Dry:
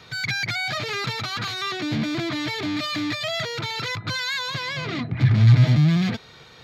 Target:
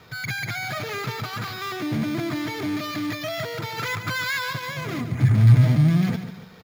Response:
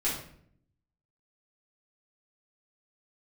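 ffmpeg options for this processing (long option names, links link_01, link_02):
-filter_complex "[0:a]asettb=1/sr,asplit=3[link_01][link_02][link_03];[link_01]atrim=end=3.784[link_04];[link_02]atrim=start=3.78:end=4.53,asetpts=PTS-STARTPTS,afade=type=in:duration=0.004:curve=qsin,afade=type=out:start_time=0.746:duration=0.004:curve=qsin,equalizer=frequency=1900:width_type=o:width=2.3:gain=5.5[link_05];[link_03]atrim=start=4.526[link_06];[link_04][link_05]acrossfade=duration=0.004:curve1=hsin:curve2=qsin[link_07];[link_07][link_06]acrossfade=duration=0.004:curve1=qsin:curve2=hsin,asplit=2[link_08][link_09];[link_09]aecho=0:1:143|286|429|572:0.299|0.116|0.0454|0.0177[link_10];[link_08][link_10]amix=inputs=2:normalize=0,acrusher=samples=5:mix=1:aa=0.000001,highshelf=frequency=3300:gain=-11.5"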